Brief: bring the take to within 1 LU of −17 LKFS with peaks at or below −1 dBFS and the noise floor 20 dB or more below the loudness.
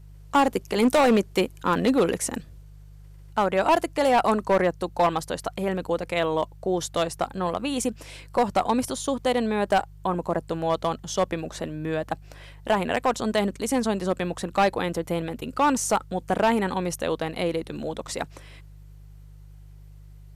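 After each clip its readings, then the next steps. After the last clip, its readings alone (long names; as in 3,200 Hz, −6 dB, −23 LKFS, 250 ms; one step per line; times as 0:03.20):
share of clipped samples 1.1%; peaks flattened at −14.0 dBFS; mains hum 50 Hz; hum harmonics up to 150 Hz; level of the hum −44 dBFS; integrated loudness −25.0 LKFS; sample peak −14.0 dBFS; target loudness −17.0 LKFS
→ clipped peaks rebuilt −14 dBFS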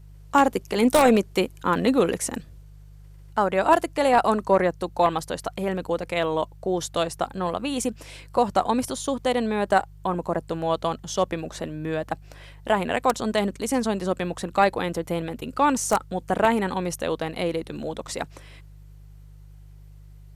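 share of clipped samples 0.0%; mains hum 50 Hz; hum harmonics up to 150 Hz; level of the hum −43 dBFS
→ hum removal 50 Hz, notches 3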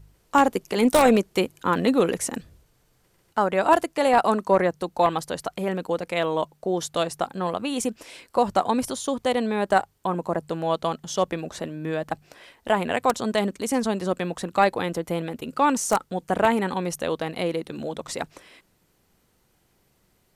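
mains hum none found; integrated loudness −24.5 LKFS; sample peak −5.0 dBFS; target loudness −17.0 LKFS
→ level +7.5 dB
brickwall limiter −1 dBFS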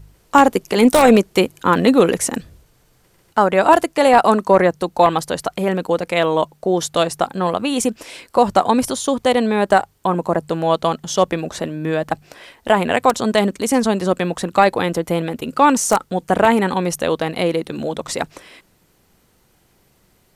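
integrated loudness −17.5 LKFS; sample peak −1.0 dBFS; background noise floor −58 dBFS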